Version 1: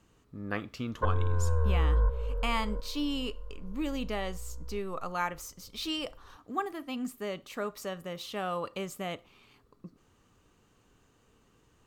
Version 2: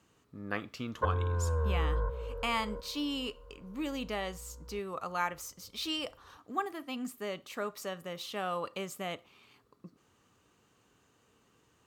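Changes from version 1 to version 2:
speech: add bass shelf 460 Hz -4 dB; master: add high-pass 79 Hz 12 dB/octave

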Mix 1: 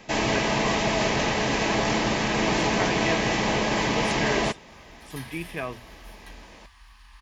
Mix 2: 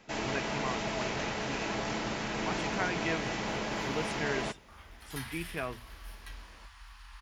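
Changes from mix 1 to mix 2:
speech -4.5 dB; first sound -10.5 dB; master: remove Butterworth band-stop 1.4 kHz, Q 7.3

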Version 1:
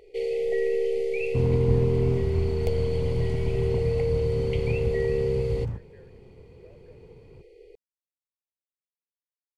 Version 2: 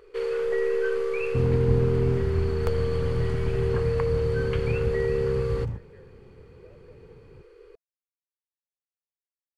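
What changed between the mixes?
first sound: remove brick-wall FIR band-stop 840–1900 Hz; master: add band-stop 670 Hz, Q 16

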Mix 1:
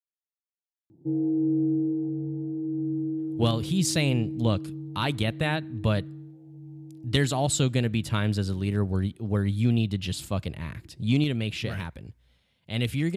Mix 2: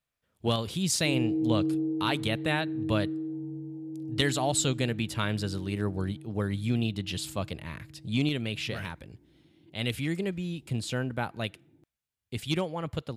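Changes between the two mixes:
speech: entry -2.95 s; master: add bass shelf 280 Hz -7 dB

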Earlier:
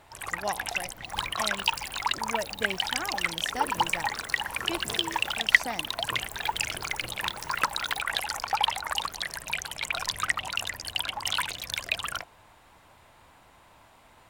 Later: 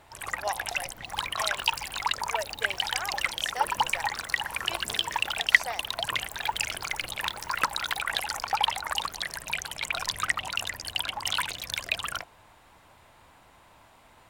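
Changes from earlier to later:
speech: add inverse Chebyshev high-pass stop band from 240 Hz, stop band 40 dB; second sound -5.5 dB

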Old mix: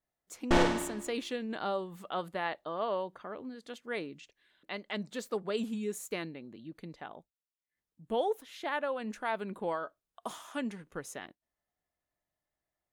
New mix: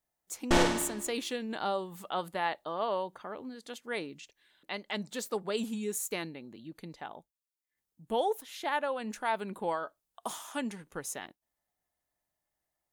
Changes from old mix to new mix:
speech: add peaking EQ 860 Hz +5 dB 0.32 oct; master: add treble shelf 4.9 kHz +10.5 dB

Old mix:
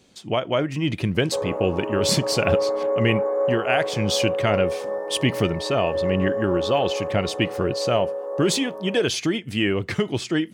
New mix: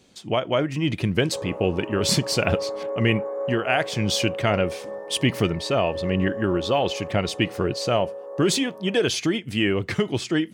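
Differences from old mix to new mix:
first sound -6.5 dB; second sound -5.0 dB

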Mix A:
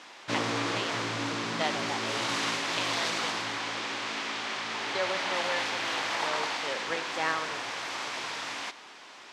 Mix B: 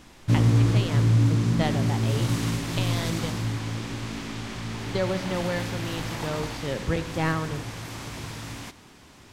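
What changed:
background -6.5 dB; master: remove band-pass 640–5300 Hz

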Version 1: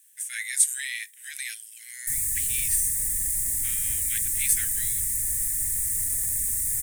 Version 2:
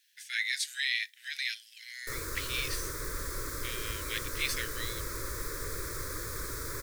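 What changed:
background: remove brick-wall FIR band-stop 290–1700 Hz; master: add resonant high shelf 6.4 kHz -13 dB, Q 3

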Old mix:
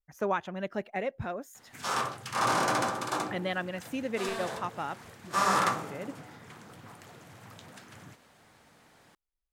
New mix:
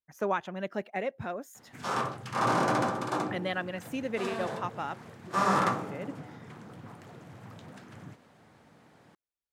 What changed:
background: add tilt EQ -2.5 dB/octave; master: add high-pass 120 Hz 12 dB/octave

